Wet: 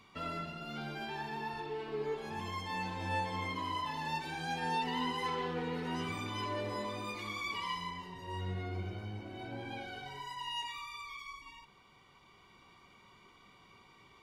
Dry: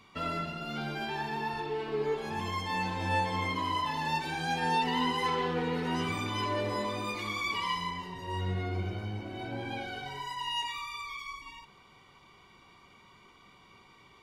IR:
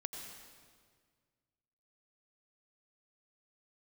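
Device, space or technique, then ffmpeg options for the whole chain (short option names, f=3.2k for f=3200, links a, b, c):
ducked reverb: -filter_complex "[0:a]asplit=3[a][b][c];[1:a]atrim=start_sample=2205[d];[b][d]afir=irnorm=-1:irlink=0[e];[c]apad=whole_len=627364[f];[e][f]sidechaincompress=threshold=-55dB:ratio=8:attack=16:release=1230,volume=-1.5dB[g];[a][g]amix=inputs=2:normalize=0,volume=-6dB"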